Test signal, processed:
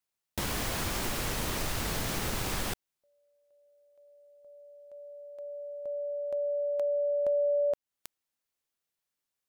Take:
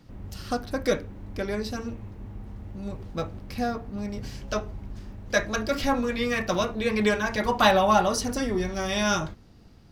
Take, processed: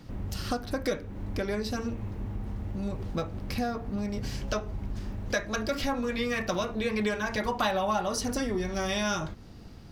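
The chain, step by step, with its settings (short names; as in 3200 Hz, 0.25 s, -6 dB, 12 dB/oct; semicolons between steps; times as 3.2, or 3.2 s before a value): compressor 3:1, threshold -35 dBFS; gain +5.5 dB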